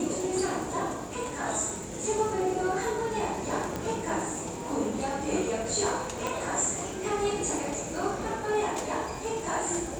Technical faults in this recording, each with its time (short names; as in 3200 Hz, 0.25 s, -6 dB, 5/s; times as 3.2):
crackle 94/s -37 dBFS
3.76 pop -18 dBFS
6.27 pop -16 dBFS